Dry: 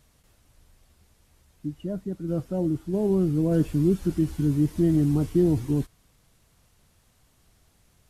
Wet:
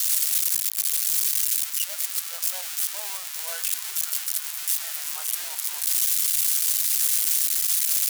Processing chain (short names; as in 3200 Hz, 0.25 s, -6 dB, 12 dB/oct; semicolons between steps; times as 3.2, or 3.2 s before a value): switching spikes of -22 dBFS; Bessel high-pass 1400 Hz, order 8; gain +8 dB